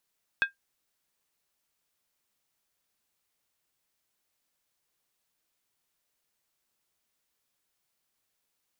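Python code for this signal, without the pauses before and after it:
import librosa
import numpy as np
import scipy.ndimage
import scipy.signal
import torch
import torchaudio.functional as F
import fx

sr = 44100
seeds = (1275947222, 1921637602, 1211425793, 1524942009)

y = fx.strike_skin(sr, length_s=0.63, level_db=-17.0, hz=1600.0, decay_s=0.13, tilt_db=7.5, modes=5)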